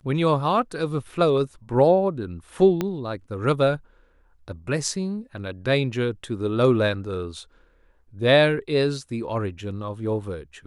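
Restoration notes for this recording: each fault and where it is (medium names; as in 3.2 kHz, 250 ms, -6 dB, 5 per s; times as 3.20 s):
2.81 s: pop -11 dBFS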